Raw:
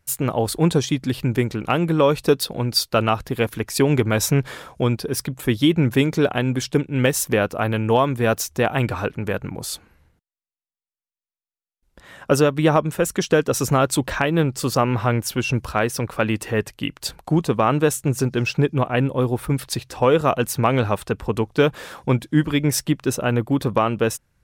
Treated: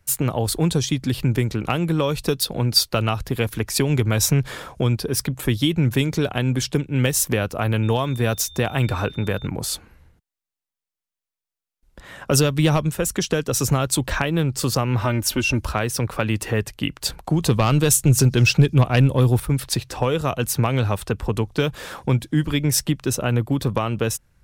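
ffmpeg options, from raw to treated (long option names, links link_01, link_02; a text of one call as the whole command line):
ffmpeg -i in.wav -filter_complex "[0:a]asettb=1/sr,asplit=3[link_01][link_02][link_03];[link_01]atrim=end=7.834[link_04];[link_02]atrim=start=7.83:end=9.47,asetpts=PTS-STARTPTS,afade=type=in:duration=0.004:curve=qsin,afade=type=out:start_time=1.636:duration=0.004:curve=qsin,aeval=exprs='val(0)+0.00631*sin(2*PI*3600*n/s)':channel_layout=same[link_05];[link_03]atrim=start=9.466[link_06];[link_04][link_05]acrossfade=duration=0.004:curve1=hsin:curve2=qsin[link_07];[link_07][link_06]acrossfade=duration=0.004:curve1=qsin:curve2=hsin,asplit=3[link_08][link_09][link_10];[link_08]afade=type=out:start_time=12.32:duration=0.02[link_11];[link_09]acontrast=31,afade=type=in:start_time=12.32:duration=0.02,afade=type=out:start_time=12.88:duration=0.02[link_12];[link_10]afade=type=in:start_time=12.88:duration=0.02[link_13];[link_11][link_12][link_13]amix=inputs=3:normalize=0,asettb=1/sr,asplit=3[link_14][link_15][link_16];[link_14]atrim=end=15.014[link_17];[link_15]atrim=start=15.01:end=15.67,asetpts=PTS-STARTPTS,afade=type=in:duration=0.004:curve=qsin,afade=type=out:start_time=0.656:duration=0.004:curve=qsin,aecho=1:1:3.3:0.65,atrim=end_sample=29106[link_18];[link_16]atrim=start=15.666[link_19];[link_17][link_18]acrossfade=duration=0.004:curve1=hsin:curve2=qsin[link_20];[link_20][link_19]acrossfade=duration=0.004:curve1=qsin:curve2=hsin,asettb=1/sr,asplit=3[link_21][link_22][link_23];[link_21]atrim=end=17.424[link_24];[link_22]atrim=start=17.42:end=19.4,asetpts=PTS-STARTPTS,afade=type=in:duration=0.004:curve=qsin,afade=type=out:start_time=1.976:duration=0.004:curve=qsin,acontrast=88[link_25];[link_23]atrim=start=19.396[link_26];[link_24][link_25]acrossfade=duration=0.004:curve1=hsin:curve2=qsin[link_27];[link_27][link_26]acrossfade=duration=0.004:curve1=qsin:curve2=hsin,lowshelf=frequency=75:gain=6,acrossover=split=130|3000[link_28][link_29][link_30];[link_29]acompressor=threshold=-25dB:ratio=3[link_31];[link_28][link_31][link_30]amix=inputs=3:normalize=0,volume=3dB" out.wav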